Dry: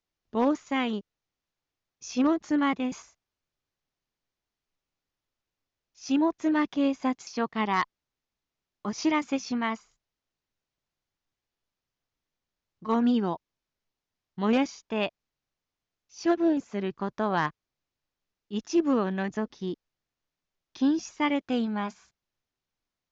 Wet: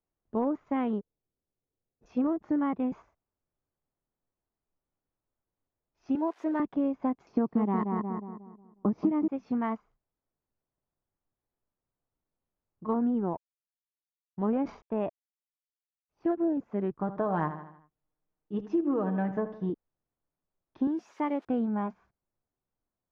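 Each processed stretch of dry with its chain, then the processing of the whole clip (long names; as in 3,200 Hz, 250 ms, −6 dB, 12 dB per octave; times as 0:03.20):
0:00.99–0:02.06: running median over 41 samples + parametric band 440 Hz +5 dB 0.4 octaves
0:06.15–0:06.60: spike at every zero crossing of −27 dBFS + high-pass filter 390 Hz
0:07.28–0:09.28: parametric band 230 Hz +13 dB 2.7 octaves + feedback echo with a low-pass in the loop 181 ms, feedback 41%, low-pass 1,700 Hz, level −6 dB
0:12.93–0:16.25: mu-law and A-law mismatch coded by A + high-shelf EQ 3,400 Hz −11.5 dB + level that may fall only so fast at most 120 dB per second
0:16.99–0:19.70: comb filter 6.5 ms, depth 59% + repeating echo 78 ms, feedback 48%, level −13 dB
0:20.87–0:21.45: spike at every zero crossing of −28.5 dBFS + high-pass filter 300 Hz
whole clip: low-pass filter 1,000 Hz 12 dB per octave; downward compressor, threshold −26 dBFS; level +1.5 dB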